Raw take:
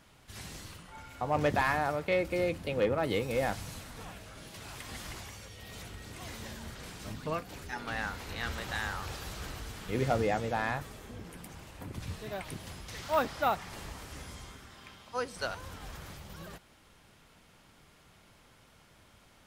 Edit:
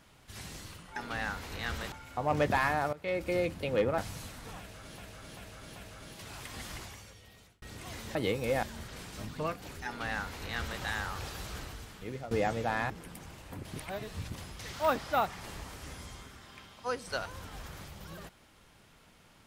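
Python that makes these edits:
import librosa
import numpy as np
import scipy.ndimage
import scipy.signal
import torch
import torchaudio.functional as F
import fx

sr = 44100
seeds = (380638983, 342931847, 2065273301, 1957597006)

y = fx.edit(x, sr, fx.fade_in_from(start_s=1.97, length_s=0.35, floor_db=-16.5),
    fx.move(start_s=3.02, length_s=0.48, to_s=6.5),
    fx.repeat(start_s=4.11, length_s=0.39, count=4),
    fx.fade_out_span(start_s=5.1, length_s=0.87),
    fx.duplicate(start_s=7.73, length_s=0.96, to_s=0.96),
    fx.fade_out_to(start_s=9.39, length_s=0.79, floor_db=-17.5),
    fx.cut(start_s=10.77, length_s=0.42),
    fx.reverse_span(start_s=11.94, length_s=0.71), tone=tone)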